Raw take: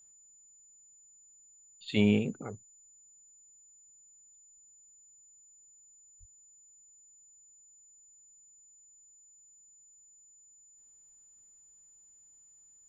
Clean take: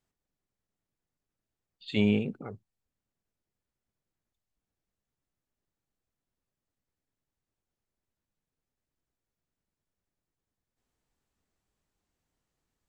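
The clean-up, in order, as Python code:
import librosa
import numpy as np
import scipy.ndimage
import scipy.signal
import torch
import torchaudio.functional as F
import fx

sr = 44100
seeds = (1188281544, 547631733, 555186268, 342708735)

y = fx.notch(x, sr, hz=7000.0, q=30.0)
y = fx.highpass(y, sr, hz=140.0, slope=24, at=(6.19, 6.31), fade=0.02)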